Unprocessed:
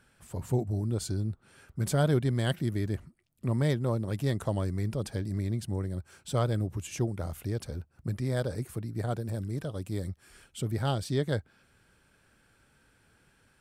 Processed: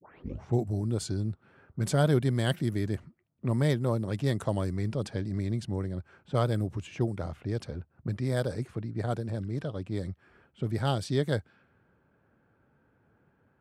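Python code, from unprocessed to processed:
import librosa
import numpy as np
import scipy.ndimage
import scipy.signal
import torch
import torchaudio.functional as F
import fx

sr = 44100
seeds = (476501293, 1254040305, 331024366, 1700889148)

y = fx.tape_start_head(x, sr, length_s=0.57)
y = scipy.signal.sosfilt(scipy.signal.butter(2, 88.0, 'highpass', fs=sr, output='sos'), y)
y = fx.env_lowpass(y, sr, base_hz=1000.0, full_db=-25.5)
y = y * librosa.db_to_amplitude(1.5)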